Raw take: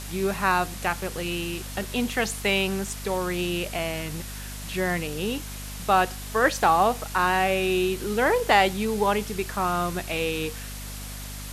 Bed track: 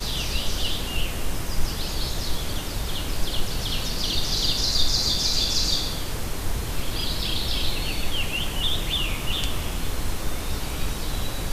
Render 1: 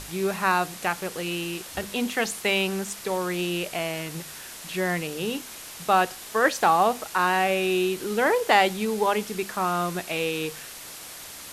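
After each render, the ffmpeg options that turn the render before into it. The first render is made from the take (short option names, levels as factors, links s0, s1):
-af "bandreject=f=50:t=h:w=6,bandreject=f=100:t=h:w=6,bandreject=f=150:t=h:w=6,bandreject=f=200:t=h:w=6,bandreject=f=250:t=h:w=6"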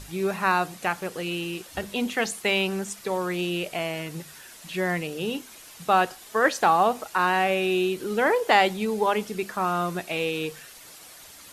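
-af "afftdn=nr=8:nf=-41"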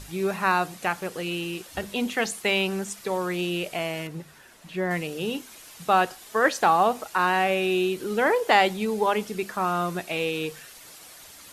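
-filter_complex "[0:a]asettb=1/sr,asplit=3[s0][s1][s2];[s0]atrim=end=4.074[s3];[s1]atrim=start=4.07:end=4.91,asetpts=PTS-STARTPTS,afade=t=in:d=0.004:c=qsin,afade=t=out:st=0.836:d=0.004:c=qsin,highshelf=f=2500:g=-11[s4];[s2]atrim=start=4.906[s5];[s3][s4]acrossfade=d=0.004:c1=hsin:c2=qsin[s6];[s6][s5]acrossfade=d=0.004:c1=qsin:c2=hsin"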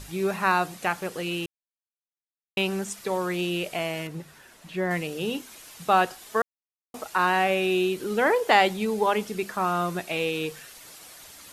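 -filter_complex "[0:a]asplit=5[s0][s1][s2][s3][s4];[s0]atrim=end=1.46,asetpts=PTS-STARTPTS,afade=t=out:st=1.456:d=0.004:c=hsin[s5];[s1]atrim=start=1.46:end=2.57,asetpts=PTS-STARTPTS,volume=0[s6];[s2]atrim=start=2.57:end=6.42,asetpts=PTS-STARTPTS,afade=t=in:d=0.004:c=hsin,afade=t=out:st=3.846:d=0.004:c=hsin[s7];[s3]atrim=start=6.42:end=6.94,asetpts=PTS-STARTPTS,volume=0[s8];[s4]atrim=start=6.94,asetpts=PTS-STARTPTS,afade=t=in:d=0.004:c=hsin[s9];[s5][s6][s7][s8][s9]concat=n=5:v=0:a=1"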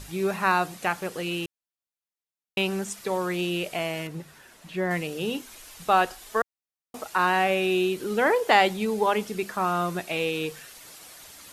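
-filter_complex "[0:a]asplit=3[s0][s1][s2];[s0]afade=t=out:st=5.45:d=0.02[s3];[s1]asubboost=boost=6:cutoff=56,afade=t=in:st=5.45:d=0.02,afade=t=out:st=6.41:d=0.02[s4];[s2]afade=t=in:st=6.41:d=0.02[s5];[s3][s4][s5]amix=inputs=3:normalize=0"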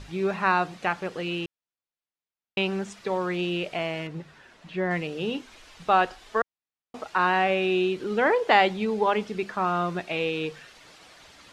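-af "lowpass=4200"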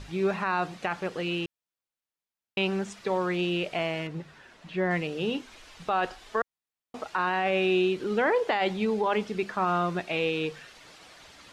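-af "alimiter=limit=0.141:level=0:latency=1:release=24"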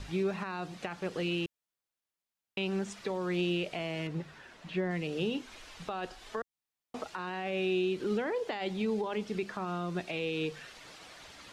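-filter_complex "[0:a]alimiter=limit=0.0794:level=0:latency=1:release=243,acrossover=split=450|3000[s0][s1][s2];[s1]acompressor=threshold=0.00891:ratio=2.5[s3];[s0][s3][s2]amix=inputs=3:normalize=0"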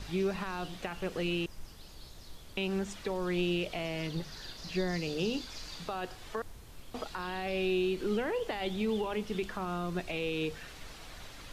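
-filter_complex "[1:a]volume=0.0708[s0];[0:a][s0]amix=inputs=2:normalize=0"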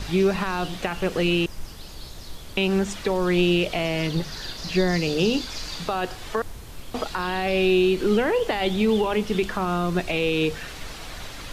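-af "volume=3.55"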